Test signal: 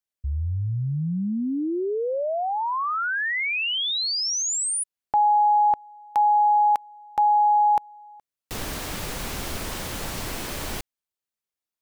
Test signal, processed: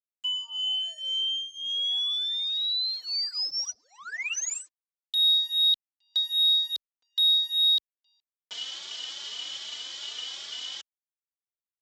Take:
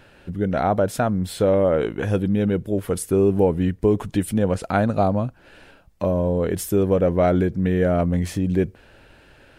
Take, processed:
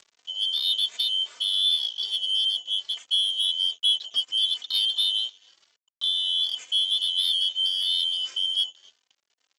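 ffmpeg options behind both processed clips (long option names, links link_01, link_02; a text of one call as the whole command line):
ffmpeg -i in.wav -filter_complex "[0:a]afftfilt=real='real(if(lt(b,272),68*(eq(floor(b/68),0)*2+eq(floor(b/68),1)*3+eq(floor(b/68),2)*0+eq(floor(b/68),3)*1)+mod(b,68),b),0)':imag='imag(if(lt(b,272),68*(eq(floor(b/68),0)*2+eq(floor(b/68),1)*3+eq(floor(b/68),2)*0+eq(floor(b/68),3)*1)+mod(b,68),b),0)':win_size=2048:overlap=0.75,acrossover=split=1700[link_01][link_02];[link_01]acompressor=threshold=-52dB:ratio=5:attack=50:release=287:knee=1:detection=peak[link_03];[link_03][link_02]amix=inputs=2:normalize=0,asplit=2[link_04][link_05];[link_05]adelay=265,lowpass=frequency=1100:poles=1,volume=-14dB,asplit=2[link_06][link_07];[link_07]adelay=265,lowpass=frequency=1100:poles=1,volume=0.32,asplit=2[link_08][link_09];[link_09]adelay=265,lowpass=frequency=1100:poles=1,volume=0.32[link_10];[link_04][link_06][link_08][link_10]amix=inputs=4:normalize=0,aresample=16000,aeval=exprs='sgn(val(0))*max(abs(val(0))-0.00668,0)':channel_layout=same,aresample=44100,highpass=56,bass=frequency=250:gain=-14,treble=frequency=4000:gain=-1,asoftclip=type=tanh:threshold=-13dB,acompressor=mode=upward:threshold=-44dB:ratio=2.5:attack=6.3:release=860:knee=2.83:detection=peak,asplit=2[link_11][link_12];[link_12]adelay=3.2,afreqshift=2.5[link_13];[link_11][link_13]amix=inputs=2:normalize=1" out.wav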